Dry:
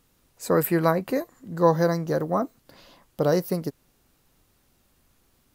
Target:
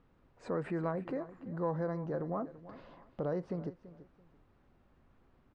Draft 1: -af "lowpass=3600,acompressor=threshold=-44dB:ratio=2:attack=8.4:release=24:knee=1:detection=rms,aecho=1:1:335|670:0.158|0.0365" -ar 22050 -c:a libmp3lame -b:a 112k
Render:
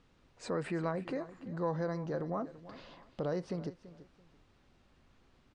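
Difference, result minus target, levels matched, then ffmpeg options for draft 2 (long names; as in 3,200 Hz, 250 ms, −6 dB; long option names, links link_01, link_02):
4,000 Hz band +11.0 dB
-af "lowpass=1600,acompressor=threshold=-44dB:ratio=2:attack=8.4:release=24:knee=1:detection=rms,aecho=1:1:335|670:0.158|0.0365" -ar 22050 -c:a libmp3lame -b:a 112k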